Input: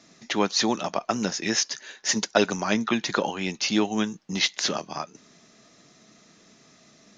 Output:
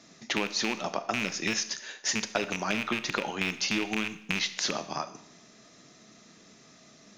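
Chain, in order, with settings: rattling part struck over -30 dBFS, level -10 dBFS; compressor, threshold -26 dBFS, peak gain reduction 12 dB; Schroeder reverb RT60 0.72 s, combs from 25 ms, DRR 11.5 dB

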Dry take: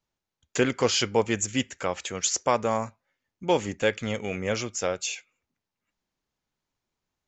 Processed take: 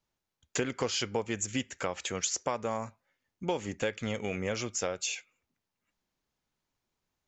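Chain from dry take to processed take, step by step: compressor 4:1, threshold -29 dBFS, peak gain reduction 11 dB

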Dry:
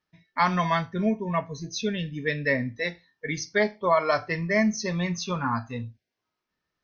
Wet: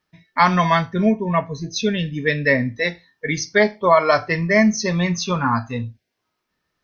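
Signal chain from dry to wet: 1.12–1.76 air absorption 89 m; gain +7.5 dB

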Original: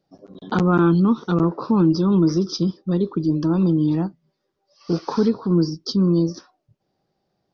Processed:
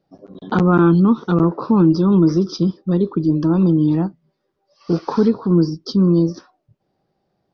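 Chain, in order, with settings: LPF 2900 Hz 6 dB/oct; gain +3.5 dB

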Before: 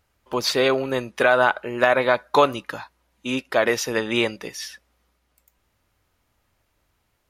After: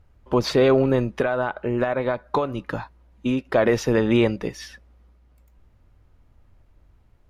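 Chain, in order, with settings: tilt -3.5 dB/oct; 1.03–3.46 compressor 16:1, threshold -21 dBFS, peak gain reduction 13.5 dB; limiter -11 dBFS, peak gain reduction 5 dB; gain +2 dB

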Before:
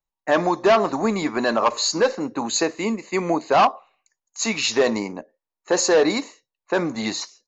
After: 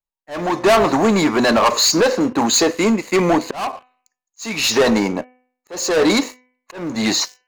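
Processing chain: sample leveller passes 3; auto swell 0.411 s; de-hum 251.6 Hz, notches 12

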